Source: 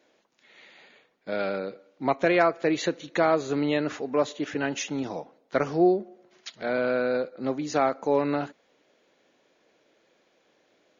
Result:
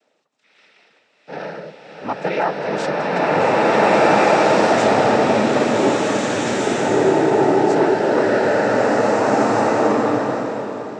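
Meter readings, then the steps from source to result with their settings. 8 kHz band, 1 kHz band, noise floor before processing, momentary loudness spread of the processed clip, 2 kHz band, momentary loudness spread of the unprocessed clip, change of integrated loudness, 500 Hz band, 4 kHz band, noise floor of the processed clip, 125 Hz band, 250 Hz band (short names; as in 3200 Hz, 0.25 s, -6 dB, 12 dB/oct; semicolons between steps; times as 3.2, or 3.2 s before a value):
n/a, +13.5 dB, -67 dBFS, 12 LU, +11.0 dB, 12 LU, +10.0 dB, +10.5 dB, +10.5 dB, -61 dBFS, +10.5 dB, +9.0 dB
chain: bell 860 Hz +2.5 dB; noise vocoder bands 12; bloom reverb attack 1.86 s, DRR -11.5 dB; gain -1 dB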